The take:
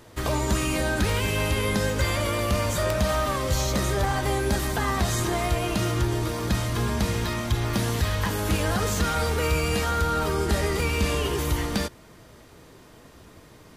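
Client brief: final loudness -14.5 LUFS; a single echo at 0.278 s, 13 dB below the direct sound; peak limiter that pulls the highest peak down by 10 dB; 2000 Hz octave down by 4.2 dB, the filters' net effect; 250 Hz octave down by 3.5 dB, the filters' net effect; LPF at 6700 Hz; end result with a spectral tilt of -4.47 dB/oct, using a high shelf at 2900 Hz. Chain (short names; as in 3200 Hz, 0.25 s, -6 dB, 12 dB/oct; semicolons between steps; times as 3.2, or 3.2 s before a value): LPF 6700 Hz; bell 250 Hz -5 dB; bell 2000 Hz -7 dB; high shelf 2900 Hz +4 dB; limiter -24 dBFS; echo 0.278 s -13 dB; gain +18 dB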